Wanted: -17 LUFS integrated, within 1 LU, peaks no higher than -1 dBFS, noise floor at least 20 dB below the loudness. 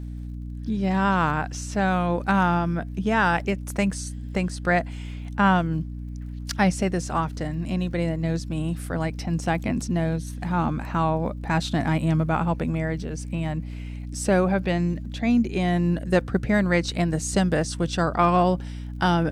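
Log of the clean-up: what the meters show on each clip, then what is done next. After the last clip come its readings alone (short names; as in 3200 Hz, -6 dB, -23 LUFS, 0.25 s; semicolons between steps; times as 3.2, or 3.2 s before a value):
ticks 45/s; hum 60 Hz; harmonics up to 300 Hz; hum level -31 dBFS; loudness -24.5 LUFS; peak -6.5 dBFS; loudness target -17.0 LUFS
-> de-click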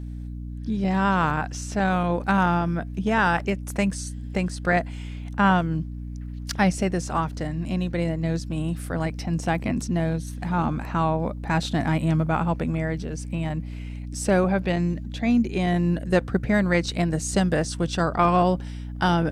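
ticks 0.052/s; hum 60 Hz; harmonics up to 300 Hz; hum level -31 dBFS
-> de-hum 60 Hz, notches 5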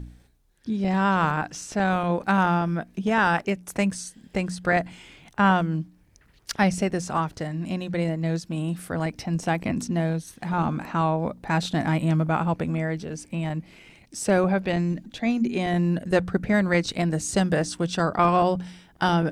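hum none; loudness -25.0 LUFS; peak -7.0 dBFS; loudness target -17.0 LUFS
-> gain +8 dB; limiter -1 dBFS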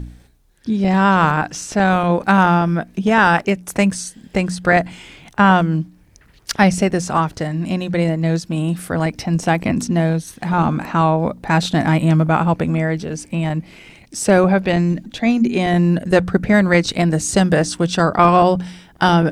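loudness -17.0 LUFS; peak -1.0 dBFS; noise floor -50 dBFS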